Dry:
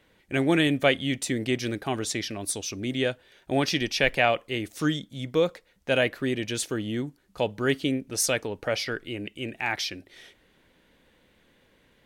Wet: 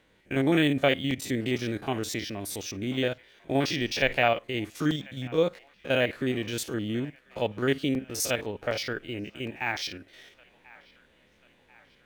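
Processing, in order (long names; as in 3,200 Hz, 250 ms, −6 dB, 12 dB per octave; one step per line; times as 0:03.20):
spectrum averaged block by block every 50 ms
delay with a band-pass on its return 1,040 ms, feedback 53%, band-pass 1,500 Hz, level −21 dB
regular buffer underruns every 0.76 s, samples 128, zero, from 0:00.35
linearly interpolated sample-rate reduction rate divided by 2×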